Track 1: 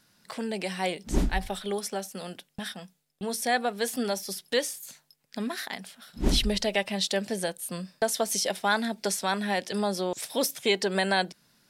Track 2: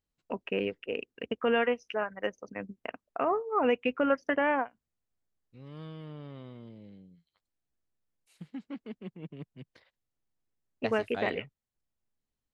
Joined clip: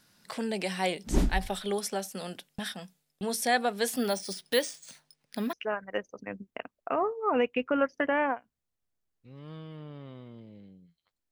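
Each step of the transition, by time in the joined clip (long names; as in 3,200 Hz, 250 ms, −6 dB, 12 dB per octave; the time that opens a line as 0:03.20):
track 1
0:03.97–0:05.53: bad sample-rate conversion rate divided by 3×, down filtered, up hold
0:05.53: continue with track 2 from 0:01.82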